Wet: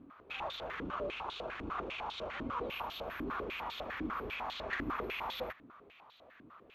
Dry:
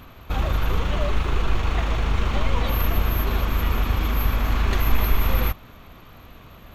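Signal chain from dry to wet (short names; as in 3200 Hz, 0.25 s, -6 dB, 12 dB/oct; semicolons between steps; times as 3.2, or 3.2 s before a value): 0.83–3.28 bell 1900 Hz -6.5 dB 0.33 oct; stepped band-pass 10 Hz 290–3700 Hz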